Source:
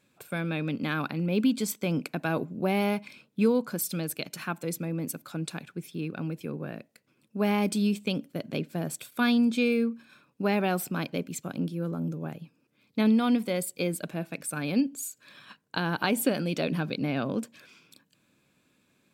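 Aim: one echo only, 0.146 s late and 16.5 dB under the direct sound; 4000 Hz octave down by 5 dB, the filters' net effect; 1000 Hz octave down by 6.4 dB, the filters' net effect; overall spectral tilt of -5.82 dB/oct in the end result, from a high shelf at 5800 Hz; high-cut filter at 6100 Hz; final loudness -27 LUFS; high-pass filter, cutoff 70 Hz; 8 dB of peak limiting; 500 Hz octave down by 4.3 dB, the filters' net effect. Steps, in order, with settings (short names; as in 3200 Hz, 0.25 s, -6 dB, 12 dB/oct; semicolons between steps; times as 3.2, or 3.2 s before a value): HPF 70 Hz; LPF 6100 Hz; bell 500 Hz -3.5 dB; bell 1000 Hz -7.5 dB; bell 4000 Hz -7.5 dB; high shelf 5800 Hz +6.5 dB; limiter -22.5 dBFS; echo 0.146 s -16.5 dB; gain +6.5 dB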